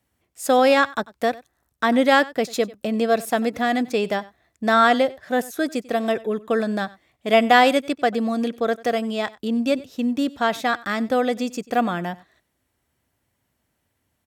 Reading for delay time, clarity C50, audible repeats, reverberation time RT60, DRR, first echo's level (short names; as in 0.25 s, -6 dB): 94 ms, none, 1, none, none, -21.0 dB